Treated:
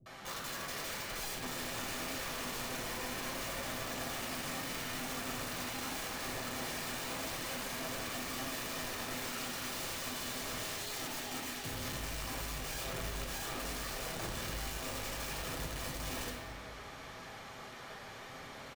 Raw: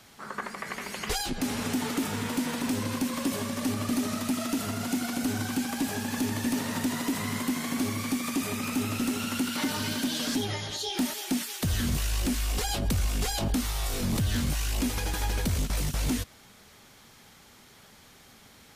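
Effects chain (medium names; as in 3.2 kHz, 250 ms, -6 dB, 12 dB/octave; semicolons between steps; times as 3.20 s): reverse; compression 20:1, threshold -38 dBFS, peak gain reduction 15.5 dB; reverse; overdrive pedal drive 12 dB, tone 1.3 kHz, clips at -26.5 dBFS; bands offset in time lows, highs 60 ms, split 300 Hz; integer overflow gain 40.5 dB; reverberation RT60 1.6 s, pre-delay 8 ms, DRR -2 dB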